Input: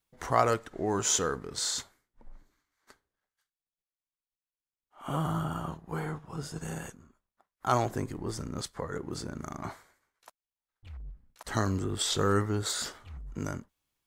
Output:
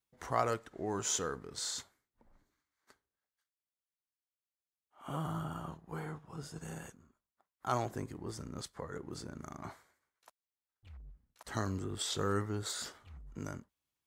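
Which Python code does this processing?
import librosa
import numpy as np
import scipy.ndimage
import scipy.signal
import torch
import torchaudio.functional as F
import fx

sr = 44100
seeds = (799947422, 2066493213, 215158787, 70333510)

y = scipy.signal.sosfilt(scipy.signal.butter(2, 43.0, 'highpass', fs=sr, output='sos'), x)
y = y * 10.0 ** (-7.0 / 20.0)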